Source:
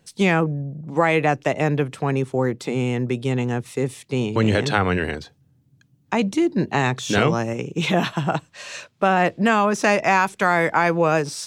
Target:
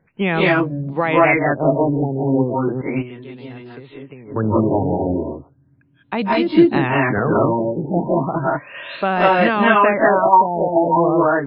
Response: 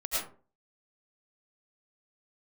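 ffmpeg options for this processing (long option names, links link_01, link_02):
-filter_complex "[0:a]asettb=1/sr,asplit=3[link_01][link_02][link_03];[link_01]atrim=end=2.814[link_04];[link_02]atrim=start=2.81:end=4.34,asetpts=PTS-STARTPTS,afade=type=in:duration=0.004:curve=qsin,afade=type=out:start_time=1.526:duration=0.004:curve=qsin,acompressor=threshold=-35dB:ratio=10[link_05];[link_03]atrim=start=4.336[link_06];[link_04][link_05]acrossfade=duration=0.004:curve1=hsin:curve2=qsin[link_07];[link_07][link_06]acrossfade=duration=0.004:curve1=qsin:curve2=hsin[link_08];[1:a]atrim=start_sample=2205,afade=type=out:start_time=0.15:duration=0.01,atrim=end_sample=7056,asetrate=22050,aresample=44100[link_09];[link_08][link_09]afir=irnorm=-1:irlink=0,afftfilt=real='re*lt(b*sr/1024,910*pow(5300/910,0.5+0.5*sin(2*PI*0.35*pts/sr)))':imag='im*lt(b*sr/1024,910*pow(5300/910,0.5+0.5*sin(2*PI*0.35*pts/sr)))':win_size=1024:overlap=0.75,volume=-2dB"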